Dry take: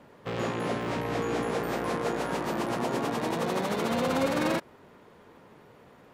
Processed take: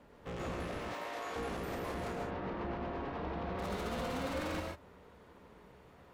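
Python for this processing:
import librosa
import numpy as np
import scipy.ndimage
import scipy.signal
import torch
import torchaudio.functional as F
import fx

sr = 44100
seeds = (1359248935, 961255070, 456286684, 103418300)

y = fx.octave_divider(x, sr, octaves=2, level_db=-3.0)
y = fx.highpass(y, sr, hz=550.0, slope=12, at=(0.78, 1.36))
y = 10.0 ** (-30.0 / 20.0) * np.tanh(y / 10.0 ** (-30.0 / 20.0))
y = fx.air_absorb(y, sr, metres=300.0, at=(2.15, 3.59))
y = fx.rev_gated(y, sr, seeds[0], gate_ms=170, shape='rising', drr_db=0.5)
y = y * 10.0 ** (-7.0 / 20.0)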